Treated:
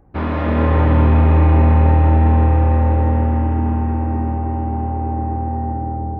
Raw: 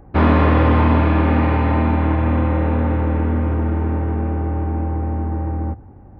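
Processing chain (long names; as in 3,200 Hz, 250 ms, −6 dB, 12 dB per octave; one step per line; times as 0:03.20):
comb and all-pass reverb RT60 4.2 s, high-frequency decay 0.25×, pre-delay 105 ms, DRR −2.5 dB
level −7.5 dB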